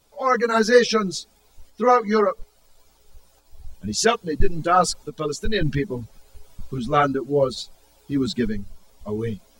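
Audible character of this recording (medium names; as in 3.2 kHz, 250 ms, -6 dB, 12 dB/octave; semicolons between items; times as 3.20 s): tremolo saw up 0.59 Hz, depth 40%; a shimmering, thickened sound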